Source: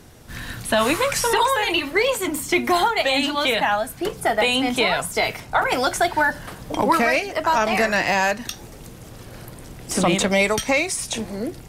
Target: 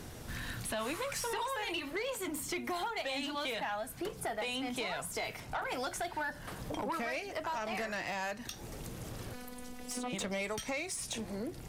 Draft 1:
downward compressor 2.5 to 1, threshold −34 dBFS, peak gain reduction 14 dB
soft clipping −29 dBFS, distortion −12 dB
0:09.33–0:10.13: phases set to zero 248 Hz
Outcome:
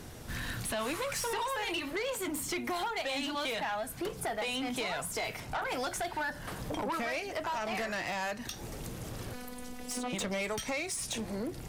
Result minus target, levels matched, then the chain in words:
downward compressor: peak gain reduction −4 dB
downward compressor 2.5 to 1, threshold −40.5 dBFS, peak gain reduction 18 dB
soft clipping −29 dBFS, distortion −17 dB
0:09.33–0:10.13: phases set to zero 248 Hz

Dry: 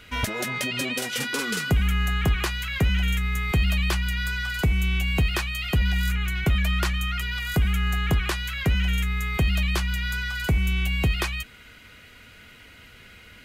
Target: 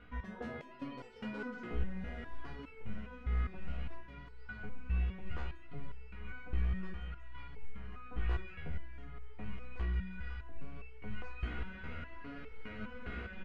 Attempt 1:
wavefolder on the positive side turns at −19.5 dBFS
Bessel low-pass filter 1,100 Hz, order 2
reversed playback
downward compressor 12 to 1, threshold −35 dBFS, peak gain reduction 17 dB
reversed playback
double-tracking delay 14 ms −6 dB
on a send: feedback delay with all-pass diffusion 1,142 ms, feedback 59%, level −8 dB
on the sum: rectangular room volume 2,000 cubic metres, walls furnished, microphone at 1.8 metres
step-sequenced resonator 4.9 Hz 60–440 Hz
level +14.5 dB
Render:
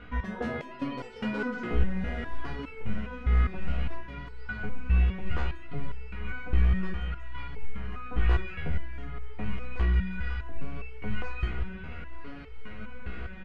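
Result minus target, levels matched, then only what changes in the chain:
downward compressor: peak gain reduction −10.5 dB
change: downward compressor 12 to 1, threshold −46.5 dBFS, peak gain reduction 28 dB

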